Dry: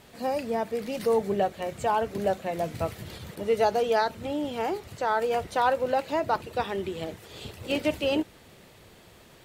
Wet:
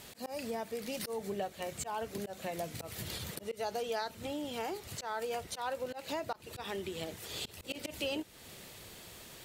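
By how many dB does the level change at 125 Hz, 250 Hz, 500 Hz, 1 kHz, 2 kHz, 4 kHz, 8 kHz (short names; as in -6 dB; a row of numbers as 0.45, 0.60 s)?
-8.5, -10.5, -12.0, -13.0, -9.5, -3.5, +2.0 dB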